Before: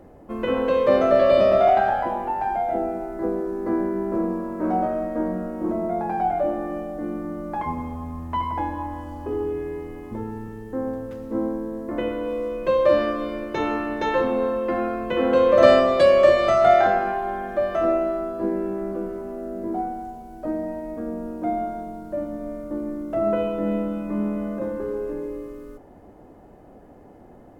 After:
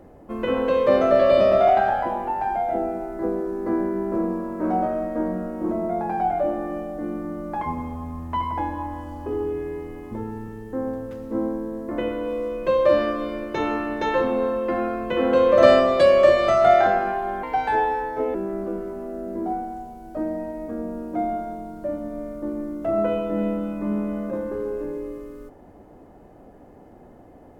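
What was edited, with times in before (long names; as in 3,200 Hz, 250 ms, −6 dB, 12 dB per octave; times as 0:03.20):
0:17.43–0:18.63: play speed 131%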